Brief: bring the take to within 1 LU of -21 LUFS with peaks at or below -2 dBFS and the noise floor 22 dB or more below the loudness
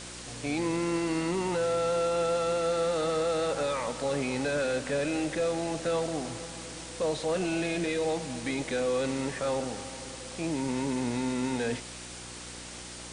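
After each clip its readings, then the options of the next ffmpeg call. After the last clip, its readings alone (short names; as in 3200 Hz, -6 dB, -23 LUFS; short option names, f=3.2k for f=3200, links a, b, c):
hum 60 Hz; harmonics up to 360 Hz; hum level -46 dBFS; noise floor -43 dBFS; noise floor target -53 dBFS; loudness -30.5 LUFS; peak -19.0 dBFS; loudness target -21.0 LUFS
-> -af "bandreject=f=60:t=h:w=4,bandreject=f=120:t=h:w=4,bandreject=f=180:t=h:w=4,bandreject=f=240:t=h:w=4,bandreject=f=300:t=h:w=4,bandreject=f=360:t=h:w=4"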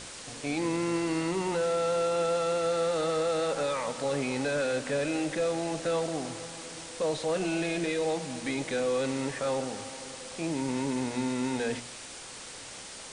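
hum none; noise floor -44 dBFS; noise floor target -53 dBFS
-> -af "afftdn=nr=9:nf=-44"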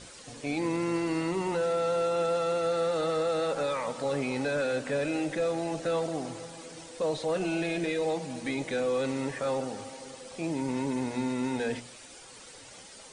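noise floor -49 dBFS; noise floor target -53 dBFS
-> -af "afftdn=nr=6:nf=-49"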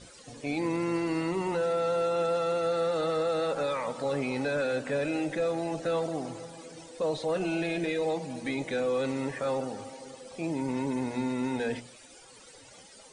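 noise floor -52 dBFS; noise floor target -53 dBFS
-> -af "afftdn=nr=6:nf=-52"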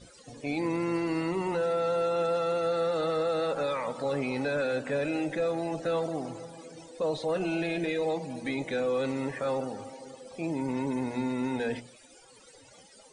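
noise floor -55 dBFS; loudness -30.5 LUFS; peak -20.0 dBFS; loudness target -21.0 LUFS
-> -af "volume=9.5dB"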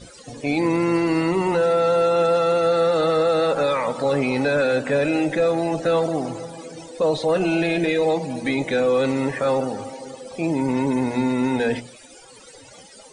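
loudness -21.0 LUFS; peak -10.5 dBFS; noise floor -46 dBFS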